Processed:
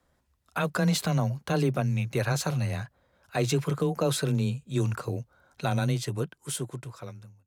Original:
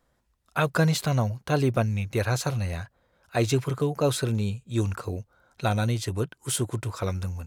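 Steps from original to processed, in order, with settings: fade out at the end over 1.72 s; frequency shift +15 Hz; peak limiter -16 dBFS, peak gain reduction 7 dB

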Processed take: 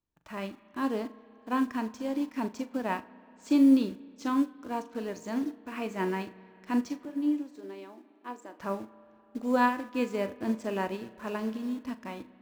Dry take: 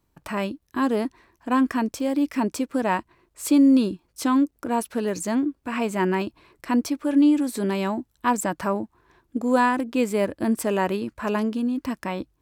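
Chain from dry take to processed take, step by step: Chebyshev low-pass 6.9 kHz, order 4; in parallel at -6 dB: bit crusher 6-bit; 7.05–8.60 s: on the sum: ladder high-pass 270 Hz, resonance 45%; on a send: flutter echo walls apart 7 m, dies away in 0.23 s; on the sum: spring tank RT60 3.3 s, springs 32/47 ms, chirp 25 ms, DRR 12 dB; upward expansion 1.5:1, over -32 dBFS; trim -7 dB

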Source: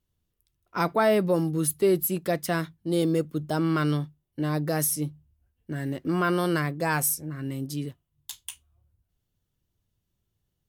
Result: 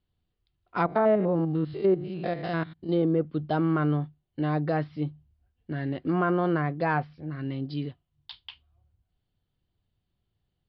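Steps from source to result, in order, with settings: 0.86–2.89 s: spectrogram pixelated in time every 100 ms; low-pass that closes with the level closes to 1.4 kHz, closed at -20 dBFS; steep low-pass 4.8 kHz 96 dB/octave; small resonant body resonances 740/3100 Hz, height 7 dB

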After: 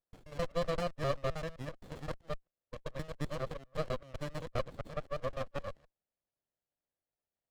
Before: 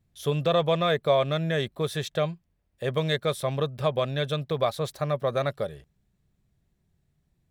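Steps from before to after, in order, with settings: time reversed locally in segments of 130 ms; brick-wall FIR band-pass 480–4600 Hz; sliding maximum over 33 samples; trim -7.5 dB

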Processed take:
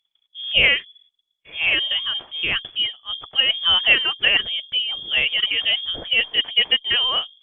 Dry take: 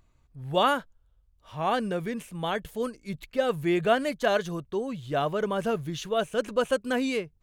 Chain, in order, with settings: hum notches 50/100/150/200 Hz; gate -60 dBFS, range -24 dB; frequency inversion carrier 3.4 kHz; trim +7 dB; Opus 32 kbps 48 kHz

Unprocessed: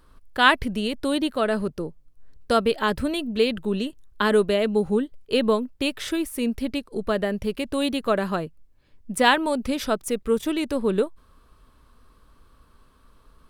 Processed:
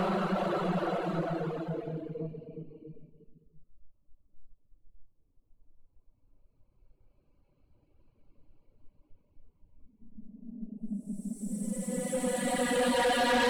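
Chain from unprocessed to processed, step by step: local Wiener filter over 25 samples; Paulstretch 15×, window 0.25 s, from 8.33 s; reverb removal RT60 1.1 s; saturation -22.5 dBFS, distortion -10 dB

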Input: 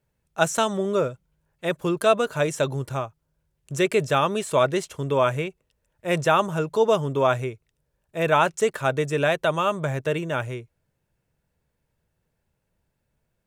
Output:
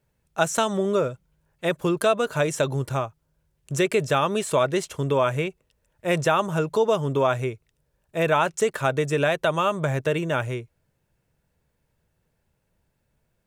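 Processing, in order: compression 2:1, threshold -23 dBFS, peak gain reduction 6 dB; trim +3 dB

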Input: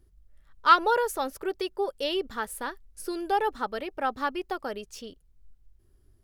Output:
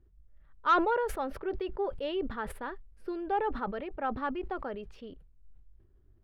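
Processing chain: distance through air 470 m; saturation -12.5 dBFS, distortion -20 dB; decay stretcher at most 71 dB/s; trim -2.5 dB

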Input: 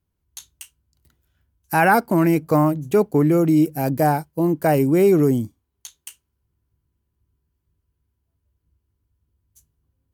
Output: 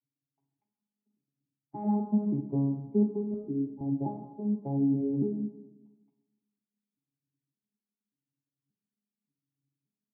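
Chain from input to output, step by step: vocoder on a broken chord bare fifth, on C#3, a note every 579 ms; cascade formant filter u; 3.34–3.81 s: static phaser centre 700 Hz, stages 6; reverberation RT60 1.2 s, pre-delay 7 ms, DRR 4 dB; trim -2.5 dB

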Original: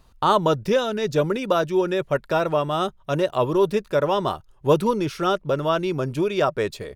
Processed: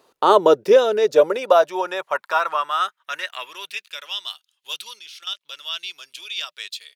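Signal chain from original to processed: high-pass sweep 410 Hz -> 3.3 kHz, 0.82–4.16 s; 4.99–5.41 s: level held to a coarse grid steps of 14 dB; trim +1.5 dB

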